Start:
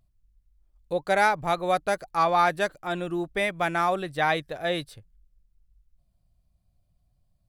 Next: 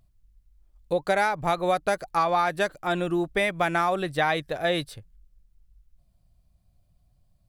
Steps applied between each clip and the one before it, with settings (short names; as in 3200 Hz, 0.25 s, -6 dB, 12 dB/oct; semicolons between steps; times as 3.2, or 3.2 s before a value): compressor, threshold -24 dBFS, peak gain reduction 8.5 dB; gain +4.5 dB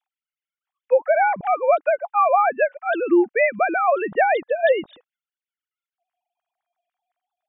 sine-wave speech; gain +6 dB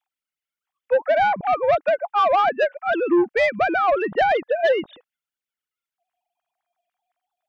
soft clip -14 dBFS, distortion -15 dB; gain +2 dB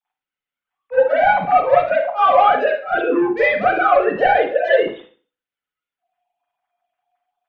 reverb RT60 0.40 s, pre-delay 35 ms, DRR -14 dB; gain -10 dB